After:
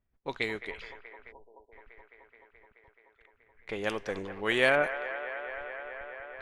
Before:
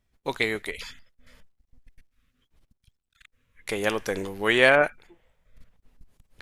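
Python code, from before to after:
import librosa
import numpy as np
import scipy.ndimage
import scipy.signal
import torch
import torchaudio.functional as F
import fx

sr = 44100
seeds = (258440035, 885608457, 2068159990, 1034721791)

y = fx.echo_wet_bandpass(x, sr, ms=214, feedback_pct=85, hz=1100.0, wet_db=-10.5)
y = fx.spec_erase(y, sr, start_s=1.32, length_s=0.4, low_hz=1000.0, high_hz=8400.0)
y = fx.env_lowpass(y, sr, base_hz=1900.0, full_db=-18.0)
y = y * 10.0 ** (-6.5 / 20.0)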